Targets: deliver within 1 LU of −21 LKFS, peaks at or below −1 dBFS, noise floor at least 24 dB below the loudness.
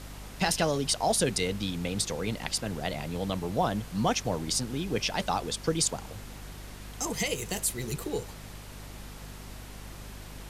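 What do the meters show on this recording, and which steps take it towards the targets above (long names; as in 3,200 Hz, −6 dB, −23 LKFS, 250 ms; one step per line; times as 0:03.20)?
mains hum 50 Hz; hum harmonics up to 250 Hz; level of the hum −42 dBFS; background noise floor −45 dBFS; target noise floor −54 dBFS; integrated loudness −30.0 LKFS; sample peak −12.5 dBFS; target loudness −21.0 LKFS
→ mains-hum notches 50/100/150/200/250 Hz
noise reduction from a noise print 9 dB
level +9 dB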